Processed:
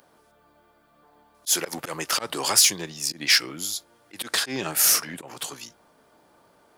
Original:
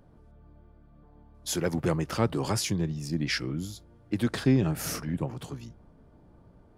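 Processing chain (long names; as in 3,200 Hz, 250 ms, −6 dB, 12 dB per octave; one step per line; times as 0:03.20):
mid-hump overdrive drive 14 dB, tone 6,500 Hz, clips at −11 dBFS
volume swells 109 ms
RIAA equalisation recording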